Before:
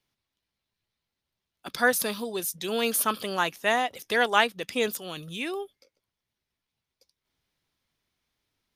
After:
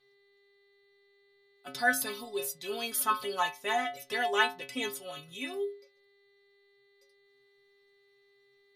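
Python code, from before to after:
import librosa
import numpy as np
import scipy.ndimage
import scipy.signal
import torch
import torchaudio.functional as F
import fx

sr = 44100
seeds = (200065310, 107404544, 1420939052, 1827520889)

y = fx.dmg_buzz(x, sr, base_hz=400.0, harmonics=11, level_db=-65.0, tilt_db=-2, odd_only=False)
y = fx.stiff_resonator(y, sr, f0_hz=130.0, decay_s=0.4, stiffness=0.008)
y = y * librosa.db_to_amplitude(7.0)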